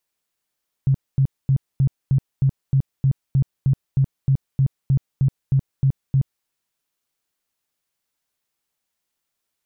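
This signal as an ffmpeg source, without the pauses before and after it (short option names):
-f lavfi -i "aevalsrc='0.224*sin(2*PI*135*mod(t,0.31))*lt(mod(t,0.31),10/135)':d=5.58:s=44100"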